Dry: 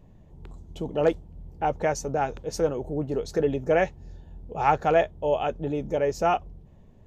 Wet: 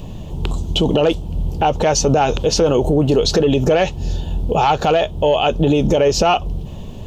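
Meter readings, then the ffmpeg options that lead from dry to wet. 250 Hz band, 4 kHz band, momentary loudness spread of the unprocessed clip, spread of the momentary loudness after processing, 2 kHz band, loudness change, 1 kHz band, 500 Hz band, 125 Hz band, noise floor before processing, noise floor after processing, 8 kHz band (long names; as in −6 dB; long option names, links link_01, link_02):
+13.0 dB, +21.5 dB, 8 LU, 10 LU, +7.5 dB, +9.5 dB, +8.0 dB, +9.0 dB, +15.0 dB, −52 dBFS, −30 dBFS, +17.0 dB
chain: -filter_complex "[0:a]equalizer=frequency=1100:width_type=o:width=0.77:gain=2.5,asoftclip=type=tanh:threshold=-11dB,acompressor=threshold=-29dB:ratio=3,highshelf=frequency=2400:width_type=q:width=3:gain=6,acrossover=split=5500[link_01][link_02];[link_02]acompressor=threshold=-57dB:ratio=4:attack=1:release=60[link_03];[link_01][link_03]amix=inputs=2:normalize=0,alimiter=level_in=27.5dB:limit=-1dB:release=50:level=0:latency=1,volume=-5.5dB"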